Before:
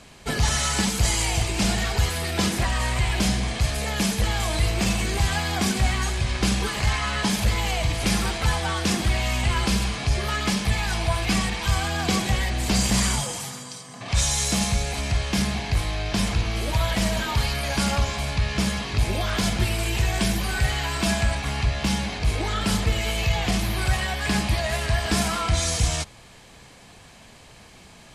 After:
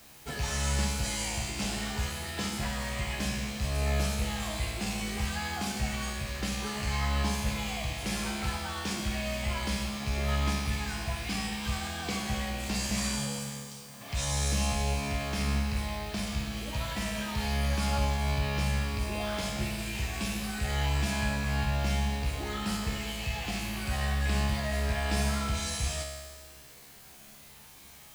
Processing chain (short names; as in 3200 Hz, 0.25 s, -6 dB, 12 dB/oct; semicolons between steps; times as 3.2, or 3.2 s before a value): rattling part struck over -21 dBFS, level -21 dBFS; in parallel at -4 dB: requantised 6-bit, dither triangular; on the sum: resonator 70 Hz, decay 1.5 s, harmonics all, mix 90%